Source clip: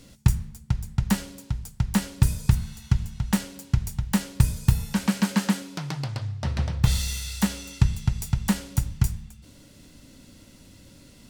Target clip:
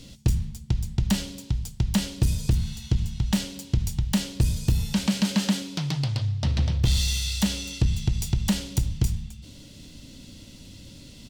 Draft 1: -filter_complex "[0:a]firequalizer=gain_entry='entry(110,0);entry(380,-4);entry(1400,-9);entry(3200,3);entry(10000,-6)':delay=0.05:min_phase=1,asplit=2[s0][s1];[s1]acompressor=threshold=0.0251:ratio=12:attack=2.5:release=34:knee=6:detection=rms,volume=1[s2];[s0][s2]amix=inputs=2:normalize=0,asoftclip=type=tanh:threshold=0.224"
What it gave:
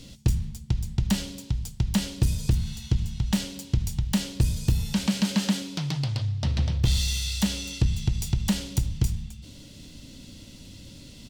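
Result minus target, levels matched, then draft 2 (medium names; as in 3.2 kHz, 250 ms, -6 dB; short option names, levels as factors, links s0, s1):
compression: peak gain reduction +6 dB
-filter_complex "[0:a]firequalizer=gain_entry='entry(110,0);entry(380,-4);entry(1400,-9);entry(3200,3);entry(10000,-6)':delay=0.05:min_phase=1,asplit=2[s0][s1];[s1]acompressor=threshold=0.0531:ratio=12:attack=2.5:release=34:knee=6:detection=rms,volume=1[s2];[s0][s2]amix=inputs=2:normalize=0,asoftclip=type=tanh:threshold=0.224"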